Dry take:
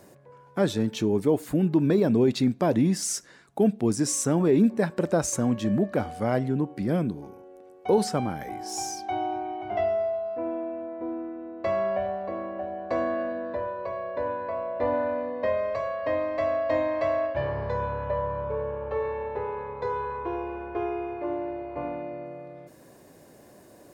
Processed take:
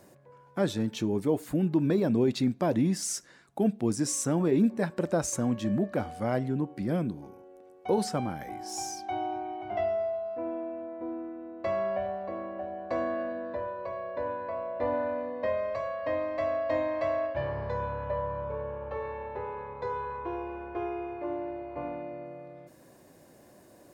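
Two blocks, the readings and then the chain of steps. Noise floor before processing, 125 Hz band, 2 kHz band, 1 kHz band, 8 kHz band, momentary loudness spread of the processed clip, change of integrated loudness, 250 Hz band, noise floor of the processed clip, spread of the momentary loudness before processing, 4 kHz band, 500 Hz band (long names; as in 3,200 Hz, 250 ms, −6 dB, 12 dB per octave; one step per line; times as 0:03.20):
−53 dBFS, −3.5 dB, −3.5 dB, −3.5 dB, −3.5 dB, 11 LU, −4.0 dB, −3.5 dB, −56 dBFS, 11 LU, −3.5 dB, −4.0 dB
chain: notch filter 430 Hz, Q 14
level −3.5 dB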